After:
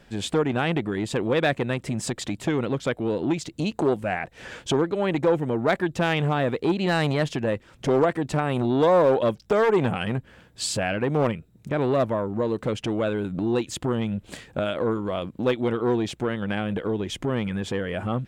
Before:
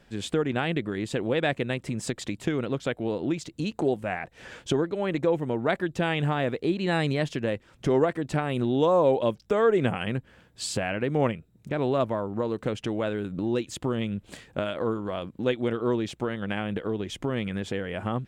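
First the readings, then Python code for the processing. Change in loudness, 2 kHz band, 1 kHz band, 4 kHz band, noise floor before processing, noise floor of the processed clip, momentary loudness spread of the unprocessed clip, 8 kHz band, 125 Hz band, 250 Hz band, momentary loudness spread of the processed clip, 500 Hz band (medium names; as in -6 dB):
+3.0 dB, +3.0 dB, +3.5 dB, +3.0 dB, -59 dBFS, -55 dBFS, 8 LU, +4.5 dB, +3.0 dB, +3.0 dB, 7 LU, +3.0 dB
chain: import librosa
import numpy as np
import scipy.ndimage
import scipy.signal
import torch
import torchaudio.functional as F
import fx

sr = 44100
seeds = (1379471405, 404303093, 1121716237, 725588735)

y = np.clip(x, -10.0 ** (-15.5 / 20.0), 10.0 ** (-15.5 / 20.0))
y = fx.transformer_sat(y, sr, knee_hz=390.0)
y = F.gain(torch.from_numpy(y), 4.5).numpy()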